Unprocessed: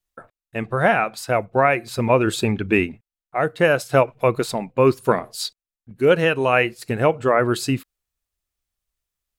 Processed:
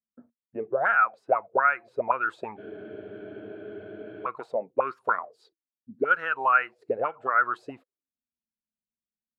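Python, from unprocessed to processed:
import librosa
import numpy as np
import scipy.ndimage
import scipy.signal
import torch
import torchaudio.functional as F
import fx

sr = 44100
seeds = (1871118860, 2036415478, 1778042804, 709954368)

y = fx.auto_wah(x, sr, base_hz=220.0, top_hz=1400.0, q=9.5, full_db=-13.5, direction='up')
y = fx.spec_freeze(y, sr, seeds[0], at_s=2.6, hold_s=1.66)
y = F.gain(torch.from_numpy(y), 6.5).numpy()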